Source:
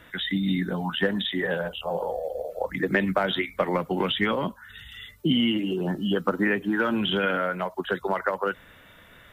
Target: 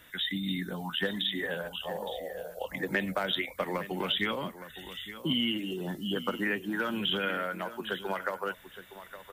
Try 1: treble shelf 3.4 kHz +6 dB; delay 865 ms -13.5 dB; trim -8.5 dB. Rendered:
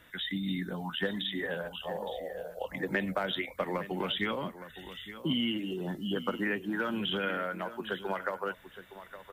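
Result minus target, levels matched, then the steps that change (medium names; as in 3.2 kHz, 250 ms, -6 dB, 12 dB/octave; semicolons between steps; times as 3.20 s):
8 kHz band -6.0 dB
change: treble shelf 3.4 kHz +14.5 dB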